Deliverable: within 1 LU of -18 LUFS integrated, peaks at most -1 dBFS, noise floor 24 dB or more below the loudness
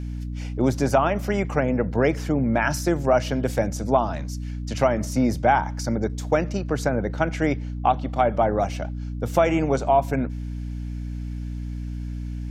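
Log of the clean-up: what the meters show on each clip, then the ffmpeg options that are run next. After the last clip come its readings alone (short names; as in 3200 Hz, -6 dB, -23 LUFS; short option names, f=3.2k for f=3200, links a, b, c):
hum 60 Hz; harmonics up to 300 Hz; hum level -28 dBFS; loudness -24.0 LUFS; peak -4.5 dBFS; loudness target -18.0 LUFS
-> -af "bandreject=f=60:t=h:w=6,bandreject=f=120:t=h:w=6,bandreject=f=180:t=h:w=6,bandreject=f=240:t=h:w=6,bandreject=f=300:t=h:w=6"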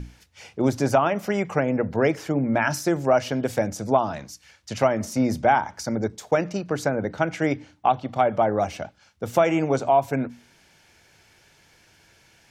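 hum none; loudness -23.5 LUFS; peak -5.5 dBFS; loudness target -18.0 LUFS
-> -af "volume=5.5dB,alimiter=limit=-1dB:level=0:latency=1"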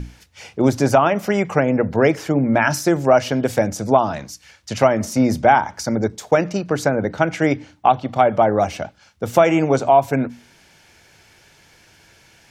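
loudness -18.0 LUFS; peak -1.0 dBFS; noise floor -53 dBFS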